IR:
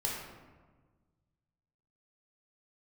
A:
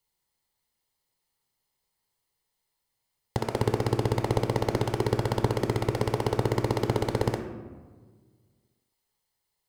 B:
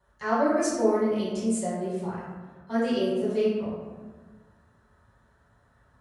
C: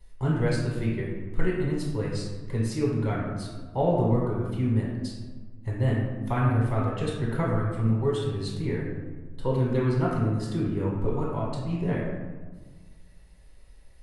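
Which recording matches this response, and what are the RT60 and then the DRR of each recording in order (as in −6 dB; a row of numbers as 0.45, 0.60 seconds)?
C; 1.4, 1.4, 1.4 seconds; 5.0, −9.5, −4.5 decibels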